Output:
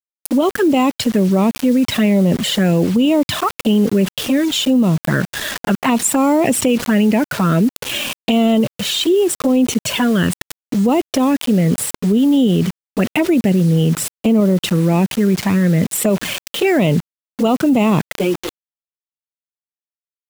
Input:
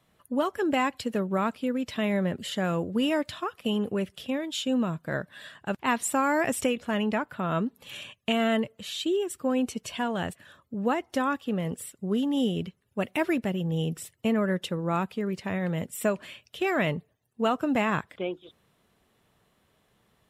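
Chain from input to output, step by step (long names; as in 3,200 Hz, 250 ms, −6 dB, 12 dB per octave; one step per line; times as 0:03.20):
high-pass filter 180 Hz 12 dB per octave
low-shelf EQ 290 Hz +11 dB
in parallel at 0 dB: output level in coarse steps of 10 dB
on the sum: flanger swept by the level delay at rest 5.3 ms, full sweep at −15.5 dBFS
bit reduction 7 bits
boost into a limiter +13.5 dB
envelope flattener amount 50%
level −7 dB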